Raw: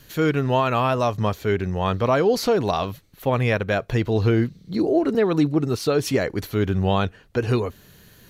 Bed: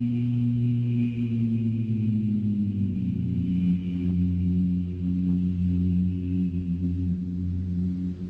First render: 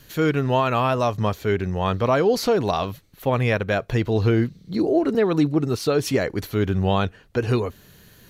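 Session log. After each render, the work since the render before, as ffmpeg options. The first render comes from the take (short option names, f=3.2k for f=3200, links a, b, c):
-af anull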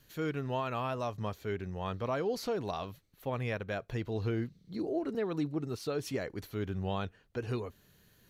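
-af "volume=-14dB"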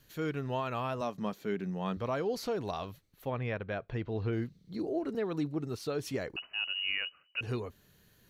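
-filter_complex "[0:a]asettb=1/sr,asplit=3[a][b][c];[a]atrim=end=1.014[d];[b]atrim=start=1.01:end=1.97,asetpts=PTS-STARTPTS,afade=t=in:d=0.004:c=qsin,afade=t=out:st=0.956:d=0.004:c=qsin,lowshelf=f=130:t=q:w=3:g=-11.5[e];[c]atrim=start=1.966[f];[d][e]acrossfade=d=0.004:c1=hsin:c2=qsin[g];[g][f]acrossfade=d=0.004:c1=qsin:c2=hsin,asettb=1/sr,asplit=3[h][i][j];[h]atrim=end=3.314[k];[i]atrim=start=3.31:end=4.33,asetpts=PTS-STARTPTS,afade=t=in:d=0.004:c=qsin,afade=t=out:st=1.016:d=0.004:c=qsin,lowpass=3.2k[l];[j]atrim=start=4.326[m];[k][l]acrossfade=d=0.004:c1=hsin:c2=qsin[n];[n][m]acrossfade=d=0.004:c1=qsin:c2=hsin,asettb=1/sr,asplit=3[o][p][q];[o]atrim=end=6.364[r];[p]atrim=start=6.36:end=7.41,asetpts=PTS-STARTPTS,afade=t=in:d=0.004:c=qsin,afade=t=out:st=1.046:d=0.004:c=qsin,lowpass=f=2.6k:t=q:w=0.5098,lowpass=f=2.6k:t=q:w=0.6013,lowpass=f=2.6k:t=q:w=0.9,lowpass=f=2.6k:t=q:w=2.563,afreqshift=-3000[s];[q]atrim=start=7.406[t];[r][s]acrossfade=d=0.004:c1=hsin:c2=qsin[u];[u][t]acrossfade=d=0.004:c1=qsin:c2=hsin"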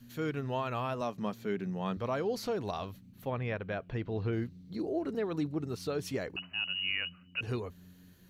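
-filter_complex "[1:a]volume=-29dB[a];[0:a][a]amix=inputs=2:normalize=0"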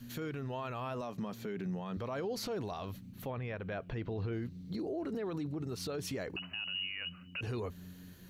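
-filter_complex "[0:a]asplit=2[a][b];[b]acompressor=threshold=-40dB:ratio=6,volume=-1.5dB[c];[a][c]amix=inputs=2:normalize=0,alimiter=level_in=6.5dB:limit=-24dB:level=0:latency=1:release=38,volume=-6.5dB"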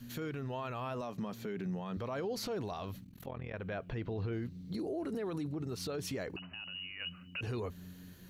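-filter_complex "[0:a]asettb=1/sr,asplit=3[a][b][c];[a]atrim=end=3.044[d];[b]atrim=start=3.04:end=3.54,asetpts=PTS-STARTPTS,afade=t=in:d=0.004:c=qsin,afade=t=out:st=0.496:d=0.004:c=qsin,tremolo=f=42:d=0.919[e];[c]atrim=start=3.536[f];[d][e]acrossfade=d=0.004:c1=hsin:c2=qsin[g];[g][f]acrossfade=d=0.004:c1=qsin:c2=hsin,asettb=1/sr,asplit=3[h][i][j];[h]atrim=end=4.744[k];[i]atrim=start=4.74:end=5.49,asetpts=PTS-STARTPTS,afade=t=in:d=0.004:c=qsin,afade=t=out:st=0.746:d=0.004:c=qsin,equalizer=f=10k:t=o:w=0.59:g=11[l];[j]atrim=start=5.486[m];[k][l]acrossfade=d=0.004:c1=hsin:c2=qsin[n];[n][m]acrossfade=d=0.004:c1=qsin:c2=hsin,asettb=1/sr,asplit=3[o][p][q];[o]atrim=end=6.364[r];[p]atrim=start=6.36:end=7,asetpts=PTS-STARTPTS,afade=t=in:d=0.004:c=qsin,afade=t=out:st=0.636:d=0.004:c=qsin,lowpass=f=1.6k:p=1[s];[q]atrim=start=6.996[t];[r][s]acrossfade=d=0.004:c1=hsin:c2=qsin[u];[u][t]acrossfade=d=0.004:c1=qsin:c2=hsin"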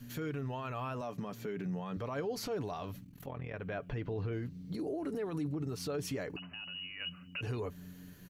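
-af "equalizer=f=3.9k:w=3.2:g=-4.5,aecho=1:1:6.9:0.34"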